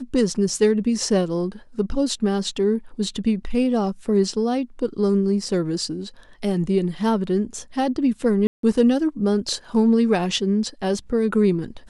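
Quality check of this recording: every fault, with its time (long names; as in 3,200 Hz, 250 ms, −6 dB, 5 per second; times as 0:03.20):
0:08.47–0:08.63: drop-out 163 ms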